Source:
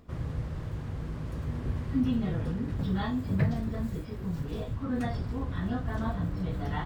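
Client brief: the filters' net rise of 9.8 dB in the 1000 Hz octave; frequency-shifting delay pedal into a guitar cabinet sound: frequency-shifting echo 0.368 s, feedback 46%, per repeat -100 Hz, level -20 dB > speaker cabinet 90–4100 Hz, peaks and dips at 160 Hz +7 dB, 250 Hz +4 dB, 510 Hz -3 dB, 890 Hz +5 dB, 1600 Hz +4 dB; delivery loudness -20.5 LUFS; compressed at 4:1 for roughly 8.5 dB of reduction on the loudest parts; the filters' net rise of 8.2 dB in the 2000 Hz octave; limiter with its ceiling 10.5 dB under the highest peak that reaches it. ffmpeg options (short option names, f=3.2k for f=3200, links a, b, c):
-filter_complex "[0:a]equalizer=f=1k:t=o:g=8,equalizer=f=2k:t=o:g=4,acompressor=threshold=-30dB:ratio=4,alimiter=level_in=8.5dB:limit=-24dB:level=0:latency=1,volume=-8.5dB,asplit=4[a][b][c][d];[b]adelay=368,afreqshift=-100,volume=-20dB[e];[c]adelay=736,afreqshift=-200,volume=-26.7dB[f];[d]adelay=1104,afreqshift=-300,volume=-33.5dB[g];[a][e][f][g]amix=inputs=4:normalize=0,highpass=90,equalizer=f=160:t=q:w=4:g=7,equalizer=f=250:t=q:w=4:g=4,equalizer=f=510:t=q:w=4:g=-3,equalizer=f=890:t=q:w=4:g=5,equalizer=f=1.6k:t=q:w=4:g=4,lowpass=f=4.1k:w=0.5412,lowpass=f=4.1k:w=1.3066,volume=18dB"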